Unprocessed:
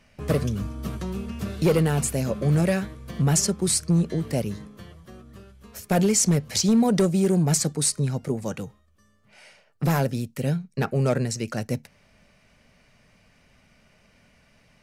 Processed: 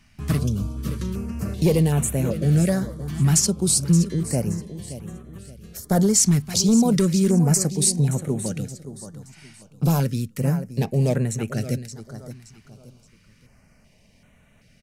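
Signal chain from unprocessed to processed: tone controls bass +4 dB, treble +4 dB; on a send: feedback delay 573 ms, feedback 33%, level -12.5 dB; on the sum: step-sequenced notch 2.6 Hz 520–4900 Hz

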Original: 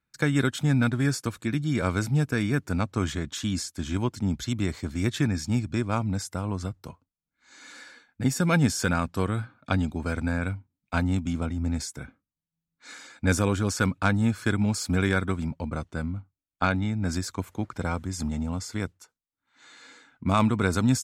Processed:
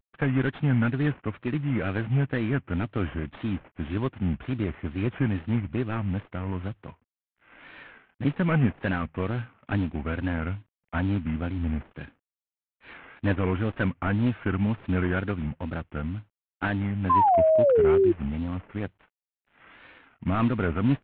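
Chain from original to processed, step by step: CVSD coder 16 kbps; painted sound fall, 17.09–18.13 s, 320–1000 Hz -19 dBFS; wow and flutter 140 cents

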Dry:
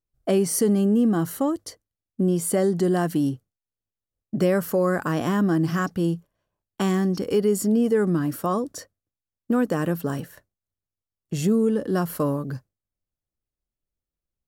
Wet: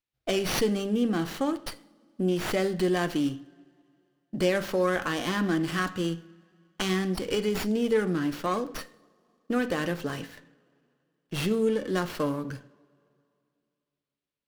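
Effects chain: frequency weighting D; reverberation, pre-delay 3 ms, DRR 8 dB; sliding maximum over 5 samples; trim -4 dB

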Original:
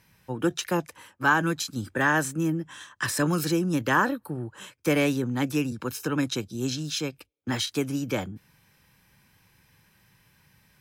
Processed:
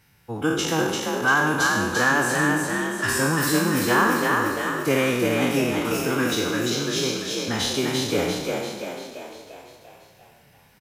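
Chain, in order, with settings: spectral sustain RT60 1.14 s; formant-preserving pitch shift -1.5 st; frequency-shifting echo 344 ms, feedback 54%, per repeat +46 Hz, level -3 dB

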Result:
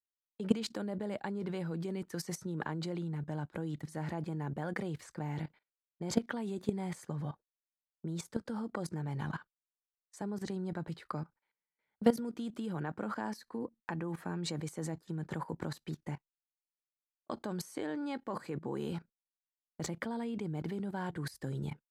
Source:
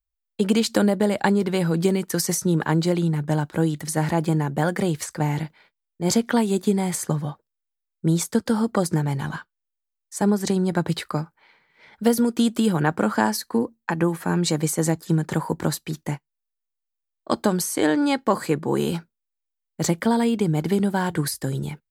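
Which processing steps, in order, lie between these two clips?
gate -42 dBFS, range -22 dB; low-pass 2.9 kHz 6 dB/octave; level held to a coarse grid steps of 16 dB; trim -5 dB

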